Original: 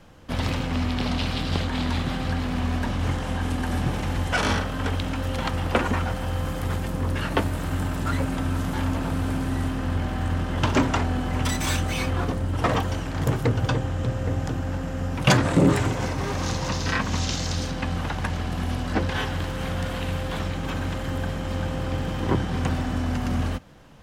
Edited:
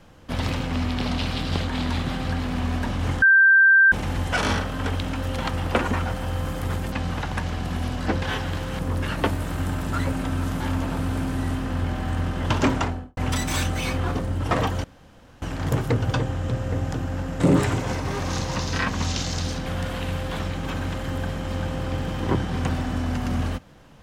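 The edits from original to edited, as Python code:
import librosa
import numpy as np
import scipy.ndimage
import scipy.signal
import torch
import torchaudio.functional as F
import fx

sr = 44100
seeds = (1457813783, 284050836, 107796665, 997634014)

y = fx.studio_fade_out(x, sr, start_s=10.89, length_s=0.41)
y = fx.edit(y, sr, fx.bleep(start_s=3.22, length_s=0.7, hz=1570.0, db=-11.0),
    fx.insert_room_tone(at_s=12.97, length_s=0.58),
    fx.cut(start_s=14.95, length_s=0.58),
    fx.move(start_s=17.79, length_s=1.87, to_s=6.92), tone=tone)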